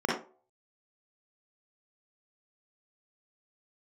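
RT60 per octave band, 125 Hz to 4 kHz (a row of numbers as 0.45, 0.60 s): 0.35, 0.35, 0.45, 0.40, 0.25, 0.20 s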